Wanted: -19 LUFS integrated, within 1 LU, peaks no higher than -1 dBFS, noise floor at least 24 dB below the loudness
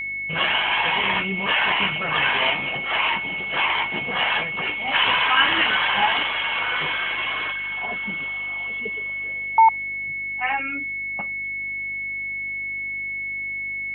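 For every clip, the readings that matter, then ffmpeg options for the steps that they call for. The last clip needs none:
hum 50 Hz; harmonics up to 350 Hz; hum level -50 dBFS; steady tone 2200 Hz; tone level -26 dBFS; loudness -21.5 LUFS; peak -6.0 dBFS; loudness target -19.0 LUFS
-> -af "bandreject=f=50:t=h:w=4,bandreject=f=100:t=h:w=4,bandreject=f=150:t=h:w=4,bandreject=f=200:t=h:w=4,bandreject=f=250:t=h:w=4,bandreject=f=300:t=h:w=4,bandreject=f=350:t=h:w=4"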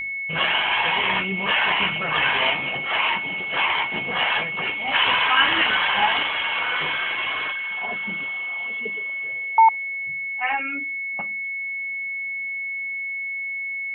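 hum none; steady tone 2200 Hz; tone level -26 dBFS
-> -af "bandreject=f=2.2k:w=30"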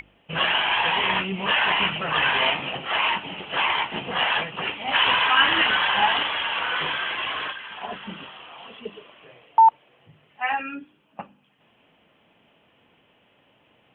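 steady tone none; loudness -21.5 LUFS; peak -6.0 dBFS; loudness target -19.0 LUFS
-> -af "volume=2.5dB"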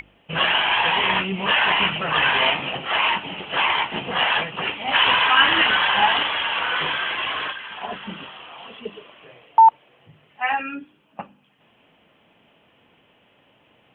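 loudness -19.0 LUFS; peak -3.5 dBFS; noise floor -60 dBFS

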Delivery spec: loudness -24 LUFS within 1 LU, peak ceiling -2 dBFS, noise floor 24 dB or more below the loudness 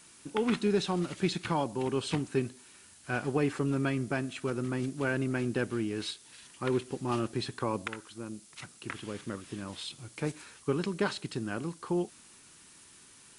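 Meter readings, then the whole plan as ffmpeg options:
noise floor -56 dBFS; noise floor target -58 dBFS; loudness -33.5 LUFS; peak -17.0 dBFS; loudness target -24.0 LUFS
-> -af "afftdn=nr=6:nf=-56"
-af "volume=9.5dB"

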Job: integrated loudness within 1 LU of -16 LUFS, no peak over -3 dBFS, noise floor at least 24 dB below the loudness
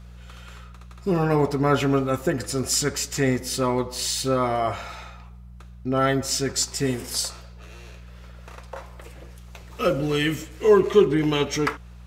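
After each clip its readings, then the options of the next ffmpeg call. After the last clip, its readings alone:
hum 60 Hz; harmonics up to 180 Hz; hum level -40 dBFS; loudness -23.0 LUFS; peak -4.5 dBFS; loudness target -16.0 LUFS
-> -af "bandreject=f=60:t=h:w=4,bandreject=f=120:t=h:w=4,bandreject=f=180:t=h:w=4"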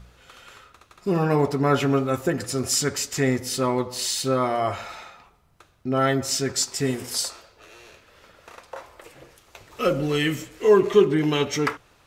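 hum none; loudness -23.0 LUFS; peak -5.0 dBFS; loudness target -16.0 LUFS
-> -af "volume=7dB,alimiter=limit=-3dB:level=0:latency=1"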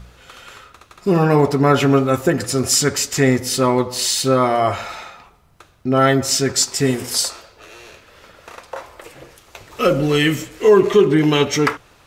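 loudness -16.5 LUFS; peak -3.0 dBFS; noise floor -51 dBFS

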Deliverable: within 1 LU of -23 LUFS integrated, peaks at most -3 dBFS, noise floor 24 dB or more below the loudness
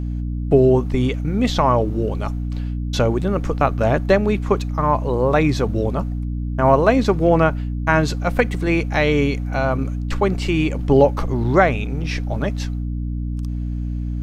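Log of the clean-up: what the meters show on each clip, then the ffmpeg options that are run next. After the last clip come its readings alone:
hum 60 Hz; harmonics up to 300 Hz; hum level -22 dBFS; loudness -19.5 LUFS; peak -2.0 dBFS; loudness target -23.0 LUFS
-> -af "bandreject=f=60:t=h:w=6,bandreject=f=120:t=h:w=6,bandreject=f=180:t=h:w=6,bandreject=f=240:t=h:w=6,bandreject=f=300:t=h:w=6"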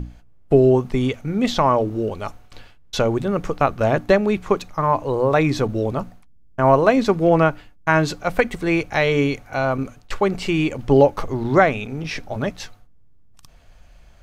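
hum none; loudness -20.0 LUFS; peak -2.0 dBFS; loudness target -23.0 LUFS
-> -af "volume=-3dB"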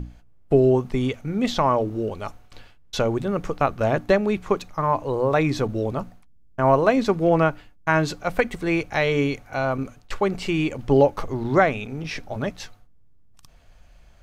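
loudness -23.0 LUFS; peak -5.0 dBFS; noise floor -51 dBFS

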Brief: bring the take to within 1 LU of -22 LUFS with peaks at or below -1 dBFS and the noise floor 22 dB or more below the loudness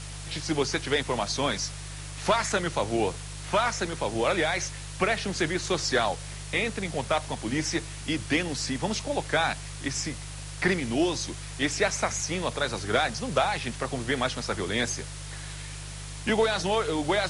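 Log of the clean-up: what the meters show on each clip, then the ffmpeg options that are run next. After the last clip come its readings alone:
hum 50 Hz; harmonics up to 150 Hz; hum level -38 dBFS; noise floor -39 dBFS; noise floor target -50 dBFS; loudness -28.0 LUFS; peak -11.5 dBFS; loudness target -22.0 LUFS
-> -af "bandreject=f=50:t=h:w=4,bandreject=f=100:t=h:w=4,bandreject=f=150:t=h:w=4"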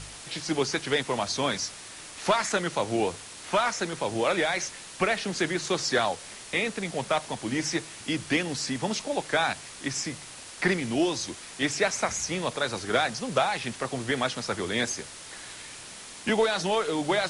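hum none; noise floor -44 dBFS; noise floor target -50 dBFS
-> -af "afftdn=nr=6:nf=-44"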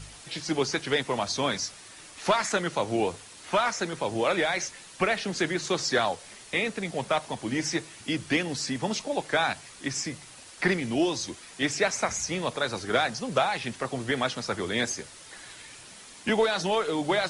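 noise floor -48 dBFS; noise floor target -50 dBFS
-> -af "afftdn=nr=6:nf=-48"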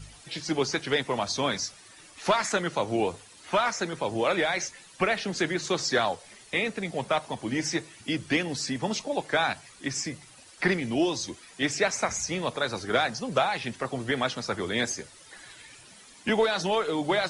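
noise floor -52 dBFS; loudness -28.5 LUFS; peak -11.5 dBFS; loudness target -22.0 LUFS
-> -af "volume=6.5dB"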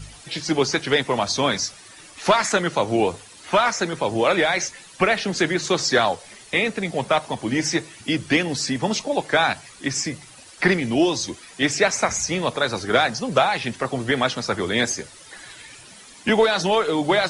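loudness -22.0 LUFS; peak -5.0 dBFS; noise floor -45 dBFS

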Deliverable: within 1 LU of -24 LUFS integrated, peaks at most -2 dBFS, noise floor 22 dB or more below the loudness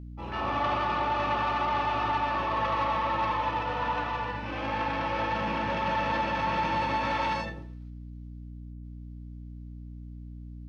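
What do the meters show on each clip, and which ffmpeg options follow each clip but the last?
hum 60 Hz; harmonics up to 300 Hz; hum level -39 dBFS; loudness -29.0 LUFS; peak -17.5 dBFS; loudness target -24.0 LUFS
-> -af "bandreject=f=60:t=h:w=4,bandreject=f=120:t=h:w=4,bandreject=f=180:t=h:w=4,bandreject=f=240:t=h:w=4,bandreject=f=300:t=h:w=4"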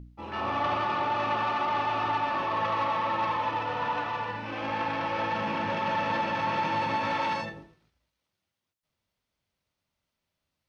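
hum none; loudness -29.0 LUFS; peak -17.5 dBFS; loudness target -24.0 LUFS
-> -af "volume=5dB"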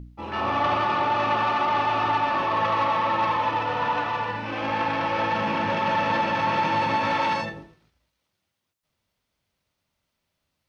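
loudness -24.0 LUFS; peak -12.5 dBFS; noise floor -79 dBFS

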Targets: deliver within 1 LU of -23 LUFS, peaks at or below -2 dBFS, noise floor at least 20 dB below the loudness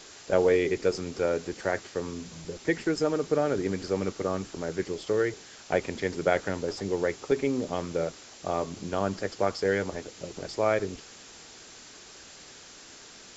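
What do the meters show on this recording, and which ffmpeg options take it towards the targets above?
noise floor -49 dBFS; noise floor target -50 dBFS; loudness -29.5 LUFS; peak -9.5 dBFS; loudness target -23.0 LUFS
-> -af "afftdn=nr=6:nf=-49"
-af "volume=6.5dB"

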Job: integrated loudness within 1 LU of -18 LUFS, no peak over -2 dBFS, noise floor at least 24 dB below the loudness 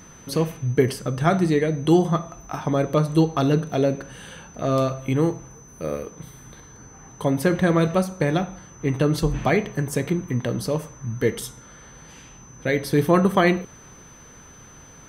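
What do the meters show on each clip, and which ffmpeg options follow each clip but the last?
steady tone 6100 Hz; tone level -48 dBFS; loudness -22.5 LUFS; peak -5.0 dBFS; loudness target -18.0 LUFS
-> -af "bandreject=f=6.1k:w=30"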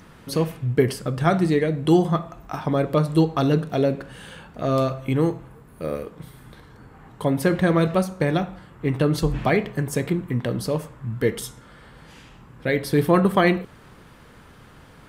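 steady tone none; loudness -22.5 LUFS; peak -5.0 dBFS; loudness target -18.0 LUFS
-> -af "volume=4.5dB,alimiter=limit=-2dB:level=0:latency=1"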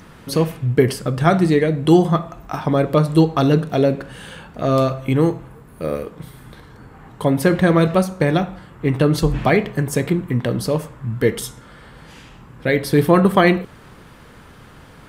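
loudness -18.5 LUFS; peak -2.0 dBFS; noise floor -44 dBFS

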